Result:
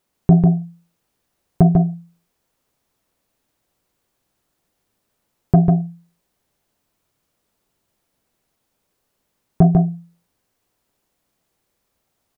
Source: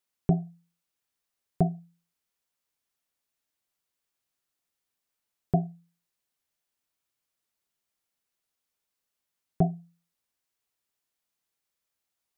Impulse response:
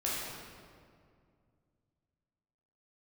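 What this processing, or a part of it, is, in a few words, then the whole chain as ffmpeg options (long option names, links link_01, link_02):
mastering chain: -af "equalizer=frequency=730:width_type=o:width=2:gain=3,acompressor=threshold=-25dB:ratio=2,asoftclip=type=tanh:threshold=-15.5dB,tiltshelf=frequency=630:gain=6.5,alimiter=level_in=15.5dB:limit=-1dB:release=50:level=0:latency=1,aecho=1:1:146:0.668,volume=-1dB"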